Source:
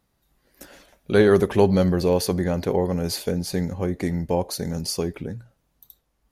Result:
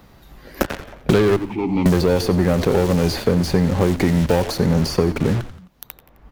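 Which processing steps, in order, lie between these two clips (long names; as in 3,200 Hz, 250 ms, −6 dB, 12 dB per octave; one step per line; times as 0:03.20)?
parametric band 10,000 Hz −12 dB 1.4 octaves
leveller curve on the samples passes 2
in parallel at −11 dB: fuzz pedal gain 44 dB, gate −39 dBFS
0:01.36–0:01.86: on the sum: formant filter u
on a send: echo with shifted repeats 87 ms, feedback 35%, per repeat −100 Hz, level −15 dB
on the sum: multiband upward and downward compressor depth 100%
level −3 dB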